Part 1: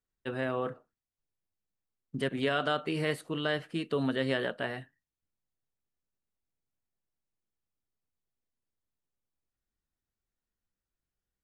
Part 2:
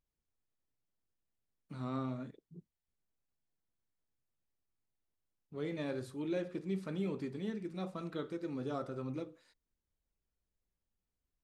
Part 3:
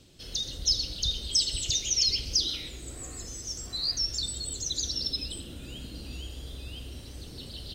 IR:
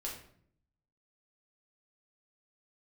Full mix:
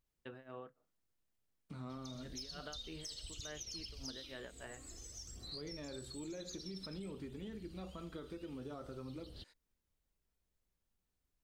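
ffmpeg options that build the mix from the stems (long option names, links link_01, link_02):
-filter_complex "[0:a]lowpass=5000,tremolo=f=3.4:d=0.93,volume=-8.5dB[link_01];[1:a]volume=2.5dB[link_02];[2:a]aphaser=in_gain=1:out_gain=1:delay=4.3:decay=0.5:speed=0.52:type=sinusoidal,aeval=exprs='0.316*(cos(1*acos(clip(val(0)/0.316,-1,1)))-cos(1*PI/2))+0.0158*(cos(4*acos(clip(val(0)/0.316,-1,1)))-cos(4*PI/2))':channel_layout=same,adelay=1700,volume=-12dB[link_03];[link_02][link_03]amix=inputs=2:normalize=0,alimiter=level_in=3.5dB:limit=-24dB:level=0:latency=1:release=57,volume=-3.5dB,volume=0dB[link_04];[link_01][link_04]amix=inputs=2:normalize=0,acompressor=threshold=-48dB:ratio=2.5"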